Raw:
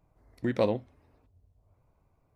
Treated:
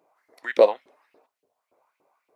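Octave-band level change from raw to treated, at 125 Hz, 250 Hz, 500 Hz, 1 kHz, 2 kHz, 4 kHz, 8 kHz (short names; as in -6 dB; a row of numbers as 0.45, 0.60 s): under -20 dB, -6.0 dB, +10.0 dB, +9.0 dB, +10.5 dB, +5.5 dB, n/a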